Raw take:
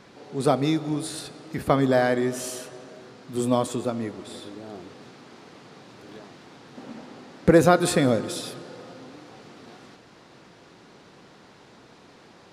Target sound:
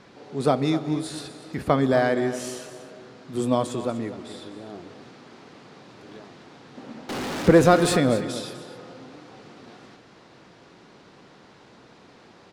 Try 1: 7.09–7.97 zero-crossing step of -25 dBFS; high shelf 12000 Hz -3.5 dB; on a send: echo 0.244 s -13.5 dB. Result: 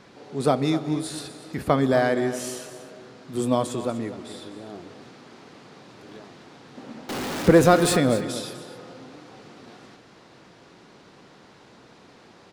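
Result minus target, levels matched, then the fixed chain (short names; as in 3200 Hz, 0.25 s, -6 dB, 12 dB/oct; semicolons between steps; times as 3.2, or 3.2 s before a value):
8000 Hz band +3.0 dB
7.09–7.97 zero-crossing step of -25 dBFS; high shelf 12000 Hz -14.5 dB; on a send: echo 0.244 s -13.5 dB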